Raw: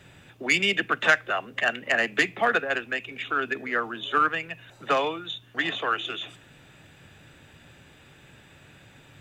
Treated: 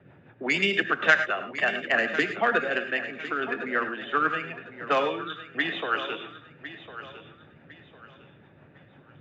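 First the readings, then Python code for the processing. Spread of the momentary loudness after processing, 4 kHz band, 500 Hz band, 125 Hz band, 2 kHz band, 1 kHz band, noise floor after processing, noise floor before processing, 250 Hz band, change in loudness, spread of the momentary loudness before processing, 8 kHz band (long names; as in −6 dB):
18 LU, −3.0 dB, +0.5 dB, −0.5 dB, 0.0 dB, −1.5 dB, −55 dBFS, −54 dBFS, +1.0 dB, −0.5 dB, 11 LU, can't be measured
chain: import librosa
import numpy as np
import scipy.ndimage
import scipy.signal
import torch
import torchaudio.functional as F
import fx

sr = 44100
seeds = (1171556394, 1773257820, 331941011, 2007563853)

y = scipy.signal.sosfilt(scipy.signal.butter(2, 120.0, 'highpass', fs=sr, output='sos'), x)
y = fx.env_lowpass(y, sr, base_hz=1300.0, full_db=-18.5)
y = fx.high_shelf(y, sr, hz=8900.0, db=-4.5)
y = fx.rotary(y, sr, hz=6.0)
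y = fx.air_absorb(y, sr, metres=71.0)
y = fx.echo_feedback(y, sr, ms=1054, feedback_pct=31, wet_db=-13.5)
y = fx.rev_gated(y, sr, seeds[0], gate_ms=130, shape='rising', drr_db=9.0)
y = F.gain(torch.from_numpy(y), 2.5).numpy()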